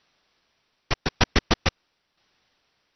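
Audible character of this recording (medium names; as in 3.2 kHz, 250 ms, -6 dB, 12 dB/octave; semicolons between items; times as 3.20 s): a quantiser's noise floor 12-bit, dither triangular; tremolo saw down 0.92 Hz, depth 60%; aliases and images of a low sample rate 12 kHz, jitter 0%; MP2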